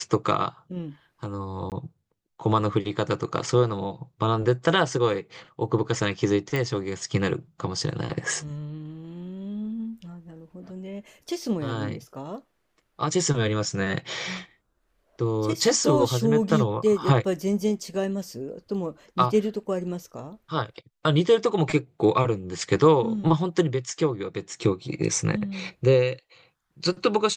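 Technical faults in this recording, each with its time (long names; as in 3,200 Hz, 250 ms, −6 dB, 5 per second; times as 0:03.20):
0:01.70–0:01.72: drop-out 18 ms
0:06.56: click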